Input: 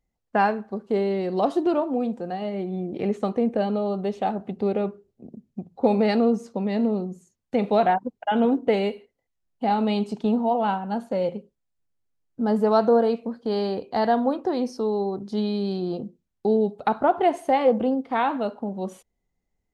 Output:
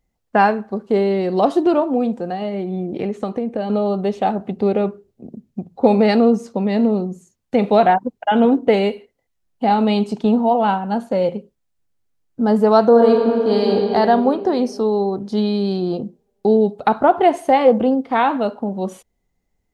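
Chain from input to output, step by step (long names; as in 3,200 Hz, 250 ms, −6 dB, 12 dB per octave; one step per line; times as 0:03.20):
0:02.23–0:03.70: downward compressor, threshold −26 dBFS, peak gain reduction 8 dB
0:12.89–0:13.75: thrown reverb, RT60 3 s, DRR 0 dB
level +6.5 dB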